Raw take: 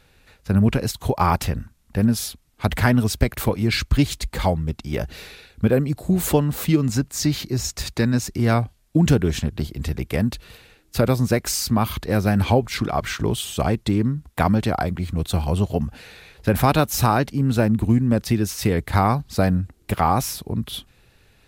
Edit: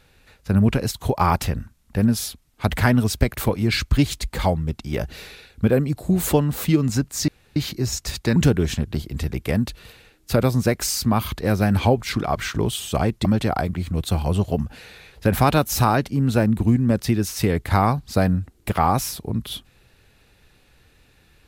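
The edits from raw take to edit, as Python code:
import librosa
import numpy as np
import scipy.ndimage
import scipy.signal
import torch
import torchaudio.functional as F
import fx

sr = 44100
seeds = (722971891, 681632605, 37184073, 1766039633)

y = fx.edit(x, sr, fx.insert_room_tone(at_s=7.28, length_s=0.28),
    fx.cut(start_s=8.08, length_s=0.93),
    fx.cut(start_s=13.9, length_s=0.57), tone=tone)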